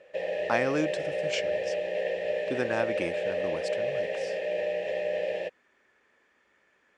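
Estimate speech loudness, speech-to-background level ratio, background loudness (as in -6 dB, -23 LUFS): -33.5 LUFS, -2.5 dB, -31.0 LUFS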